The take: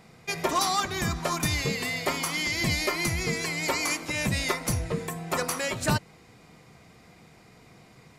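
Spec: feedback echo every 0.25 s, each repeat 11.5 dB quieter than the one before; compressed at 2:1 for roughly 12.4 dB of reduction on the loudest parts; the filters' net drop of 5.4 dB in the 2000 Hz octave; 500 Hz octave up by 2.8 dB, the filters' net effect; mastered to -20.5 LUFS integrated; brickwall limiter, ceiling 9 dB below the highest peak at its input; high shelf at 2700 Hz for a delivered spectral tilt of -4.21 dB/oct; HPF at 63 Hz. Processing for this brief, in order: HPF 63 Hz; bell 500 Hz +4 dB; bell 2000 Hz -4 dB; high shelf 2700 Hz -5.5 dB; compressor 2:1, threshold -45 dBFS; limiter -33 dBFS; feedback echo 0.25 s, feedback 27%, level -11.5 dB; gain +21.5 dB

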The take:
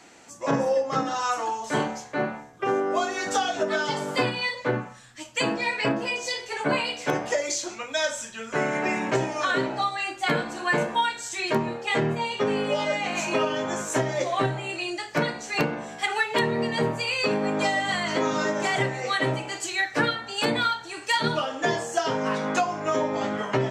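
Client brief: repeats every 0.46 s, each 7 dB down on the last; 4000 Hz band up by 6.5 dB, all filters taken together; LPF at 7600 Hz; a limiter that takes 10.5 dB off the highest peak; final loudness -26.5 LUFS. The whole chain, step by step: LPF 7600 Hz; bell 4000 Hz +8.5 dB; limiter -19 dBFS; feedback echo 0.46 s, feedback 45%, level -7 dB; gain +0.5 dB

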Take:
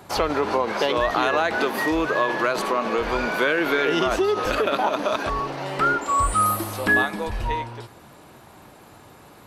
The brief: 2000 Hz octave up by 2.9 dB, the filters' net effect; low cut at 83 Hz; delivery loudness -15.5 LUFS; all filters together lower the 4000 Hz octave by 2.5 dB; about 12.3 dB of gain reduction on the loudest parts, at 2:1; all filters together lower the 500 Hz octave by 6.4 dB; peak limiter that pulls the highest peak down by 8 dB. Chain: HPF 83 Hz; bell 500 Hz -8.5 dB; bell 2000 Hz +5.5 dB; bell 4000 Hz -5.5 dB; compressor 2:1, threshold -36 dBFS; gain +17.5 dB; limiter -5.5 dBFS

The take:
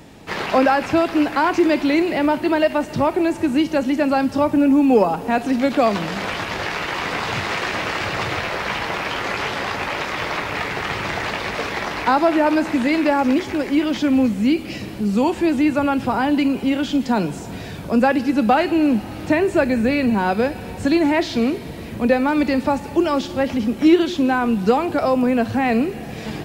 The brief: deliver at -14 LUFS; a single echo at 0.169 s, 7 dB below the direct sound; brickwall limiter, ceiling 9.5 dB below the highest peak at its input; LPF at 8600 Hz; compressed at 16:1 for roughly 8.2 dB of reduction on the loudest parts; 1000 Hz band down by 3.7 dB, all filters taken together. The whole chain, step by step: LPF 8600 Hz; bell 1000 Hz -5 dB; compressor 16:1, threshold -17 dBFS; limiter -18 dBFS; echo 0.169 s -7 dB; gain +11.5 dB

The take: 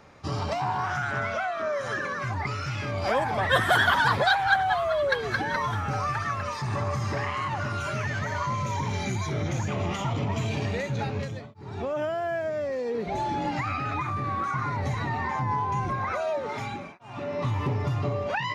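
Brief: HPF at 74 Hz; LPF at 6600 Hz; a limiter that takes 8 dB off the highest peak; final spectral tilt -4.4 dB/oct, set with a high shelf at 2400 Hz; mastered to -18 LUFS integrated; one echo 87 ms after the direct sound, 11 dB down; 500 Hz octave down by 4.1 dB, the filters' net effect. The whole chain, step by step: HPF 74 Hz; LPF 6600 Hz; bell 500 Hz -6 dB; high shelf 2400 Hz +8.5 dB; limiter -15.5 dBFS; echo 87 ms -11 dB; gain +10 dB

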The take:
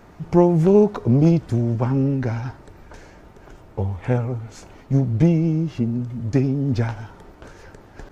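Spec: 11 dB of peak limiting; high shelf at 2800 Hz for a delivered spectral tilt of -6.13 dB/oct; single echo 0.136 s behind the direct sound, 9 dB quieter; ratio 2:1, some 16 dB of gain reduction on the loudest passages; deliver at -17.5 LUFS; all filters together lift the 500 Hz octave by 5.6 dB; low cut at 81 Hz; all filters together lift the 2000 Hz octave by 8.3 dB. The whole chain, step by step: HPF 81 Hz; bell 500 Hz +7 dB; bell 2000 Hz +8.5 dB; high shelf 2800 Hz +5 dB; compressor 2:1, threshold -35 dBFS; limiter -25 dBFS; echo 0.136 s -9 dB; gain +17.5 dB

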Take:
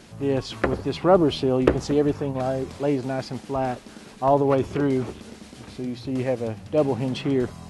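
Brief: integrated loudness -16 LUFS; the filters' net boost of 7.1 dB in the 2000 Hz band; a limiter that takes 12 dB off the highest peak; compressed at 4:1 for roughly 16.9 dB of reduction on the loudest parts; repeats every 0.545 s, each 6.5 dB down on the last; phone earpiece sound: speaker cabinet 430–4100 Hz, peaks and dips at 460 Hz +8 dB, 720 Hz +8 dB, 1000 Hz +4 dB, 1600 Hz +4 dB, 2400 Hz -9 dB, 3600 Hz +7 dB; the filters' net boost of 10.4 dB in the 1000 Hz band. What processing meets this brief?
bell 1000 Hz +5 dB; bell 2000 Hz +5.5 dB; compressor 4:1, threshold -33 dBFS; limiter -26 dBFS; speaker cabinet 430–4100 Hz, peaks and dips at 460 Hz +8 dB, 720 Hz +8 dB, 1000 Hz +4 dB, 1600 Hz +4 dB, 2400 Hz -9 dB, 3600 Hz +7 dB; feedback echo 0.545 s, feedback 47%, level -6.5 dB; gain +18.5 dB

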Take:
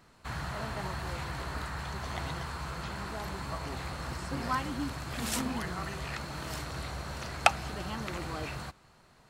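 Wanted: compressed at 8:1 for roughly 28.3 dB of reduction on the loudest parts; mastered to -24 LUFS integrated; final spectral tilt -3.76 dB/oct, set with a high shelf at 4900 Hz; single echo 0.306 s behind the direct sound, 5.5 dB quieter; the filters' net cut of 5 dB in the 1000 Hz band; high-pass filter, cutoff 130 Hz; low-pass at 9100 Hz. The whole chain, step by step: HPF 130 Hz; LPF 9100 Hz; bell 1000 Hz -7 dB; high shelf 4900 Hz +4 dB; compressor 8:1, threshold -49 dBFS; echo 0.306 s -5.5 dB; gain +26.5 dB

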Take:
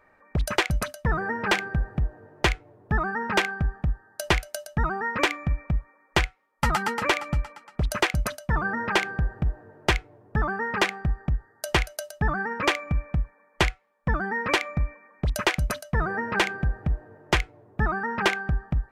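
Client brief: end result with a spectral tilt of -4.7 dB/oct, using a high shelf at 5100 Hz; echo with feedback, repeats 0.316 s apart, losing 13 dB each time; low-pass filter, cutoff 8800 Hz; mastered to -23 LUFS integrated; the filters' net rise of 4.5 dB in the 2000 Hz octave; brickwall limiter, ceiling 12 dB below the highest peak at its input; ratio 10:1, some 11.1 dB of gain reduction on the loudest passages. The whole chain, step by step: LPF 8800 Hz; bell 2000 Hz +5 dB; high shelf 5100 Hz +4 dB; compressor 10:1, threshold -26 dBFS; limiter -21 dBFS; feedback echo 0.316 s, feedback 22%, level -13 dB; gain +10.5 dB

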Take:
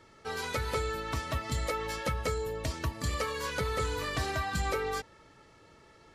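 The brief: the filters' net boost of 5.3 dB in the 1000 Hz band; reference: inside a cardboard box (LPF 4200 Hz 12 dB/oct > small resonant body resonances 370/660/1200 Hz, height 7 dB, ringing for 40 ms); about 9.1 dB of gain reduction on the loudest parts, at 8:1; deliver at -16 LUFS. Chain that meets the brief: bell 1000 Hz +7 dB; compressor 8:1, threshold -35 dBFS; LPF 4200 Hz 12 dB/oct; small resonant body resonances 370/660/1200 Hz, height 7 dB, ringing for 40 ms; gain +21.5 dB

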